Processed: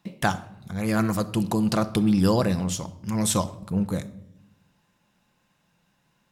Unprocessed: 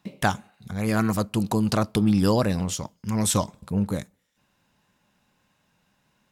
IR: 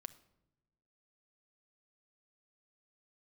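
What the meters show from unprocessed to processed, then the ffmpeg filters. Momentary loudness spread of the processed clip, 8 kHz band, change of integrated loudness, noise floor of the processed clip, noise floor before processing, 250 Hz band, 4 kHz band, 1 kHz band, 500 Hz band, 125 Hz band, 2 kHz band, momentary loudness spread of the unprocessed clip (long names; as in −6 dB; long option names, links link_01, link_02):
11 LU, −0.5 dB, −0.5 dB, −69 dBFS, −70 dBFS, +0.5 dB, −0.5 dB, −0.5 dB, −0.5 dB, −1.0 dB, −0.5 dB, 9 LU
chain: -filter_complex "[1:a]atrim=start_sample=2205[link_01];[0:a][link_01]afir=irnorm=-1:irlink=0,volume=4.5dB"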